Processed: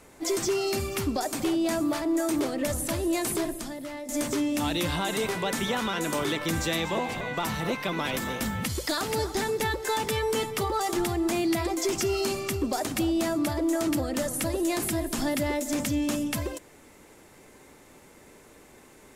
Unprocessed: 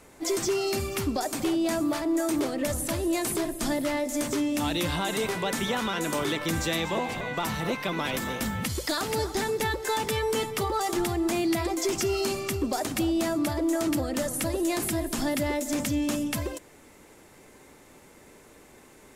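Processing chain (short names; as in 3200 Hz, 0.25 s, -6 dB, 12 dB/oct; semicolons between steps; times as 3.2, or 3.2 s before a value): 3.58–4.09 compressor 5:1, threshold -35 dBFS, peak gain reduction 10.5 dB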